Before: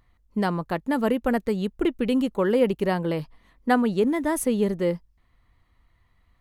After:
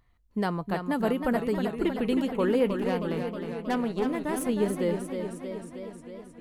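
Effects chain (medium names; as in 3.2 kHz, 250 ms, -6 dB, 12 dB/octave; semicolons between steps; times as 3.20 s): feedback comb 140 Hz, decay 0.21 s, harmonics odd, mix 40%; 2.69–4.49 s: valve stage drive 22 dB, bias 0.65; modulated delay 314 ms, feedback 69%, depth 81 cents, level -7 dB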